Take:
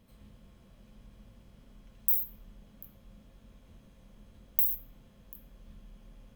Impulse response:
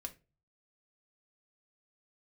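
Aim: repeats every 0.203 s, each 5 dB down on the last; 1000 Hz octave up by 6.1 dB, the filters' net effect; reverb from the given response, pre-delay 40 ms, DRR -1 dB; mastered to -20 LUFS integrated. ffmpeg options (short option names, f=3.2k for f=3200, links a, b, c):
-filter_complex "[0:a]equalizer=f=1k:t=o:g=7.5,aecho=1:1:203|406|609|812|1015|1218|1421:0.562|0.315|0.176|0.0988|0.0553|0.031|0.0173,asplit=2[a][b];[1:a]atrim=start_sample=2205,adelay=40[c];[b][c]afir=irnorm=-1:irlink=0,volume=4dB[d];[a][d]amix=inputs=2:normalize=0,volume=6.5dB"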